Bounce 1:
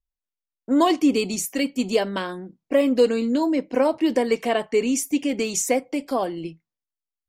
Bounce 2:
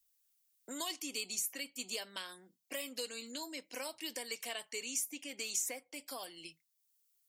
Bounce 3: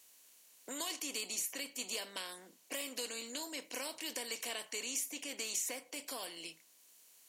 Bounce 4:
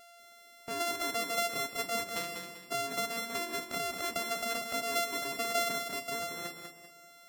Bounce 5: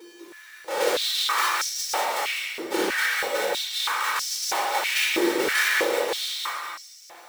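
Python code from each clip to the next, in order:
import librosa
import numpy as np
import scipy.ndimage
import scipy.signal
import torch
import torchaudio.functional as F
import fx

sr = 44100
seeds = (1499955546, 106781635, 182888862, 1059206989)

y1 = librosa.effects.preemphasis(x, coef=0.97, zi=[0.0])
y1 = fx.band_squash(y1, sr, depth_pct=70)
y1 = y1 * 10.0 ** (-3.5 / 20.0)
y2 = fx.bin_compress(y1, sr, power=0.6)
y2 = y2 * 10.0 ** (-3.5 / 20.0)
y3 = np.r_[np.sort(y2[:len(y2) // 64 * 64].reshape(-1, 64), axis=1).ravel(), y2[len(y2) // 64 * 64:]]
y3 = fx.echo_feedback(y3, sr, ms=195, feedback_pct=38, wet_db=-6)
y3 = fx.spec_gate(y3, sr, threshold_db=-25, keep='strong')
y3 = y3 * 10.0 ** (7.0 / 20.0)
y4 = fx.cycle_switch(y3, sr, every=2, mode='inverted')
y4 = fx.room_shoebox(y4, sr, seeds[0], volume_m3=2000.0, walls='mixed', distance_m=4.4)
y4 = fx.filter_held_highpass(y4, sr, hz=3.1, low_hz=340.0, high_hz=5500.0)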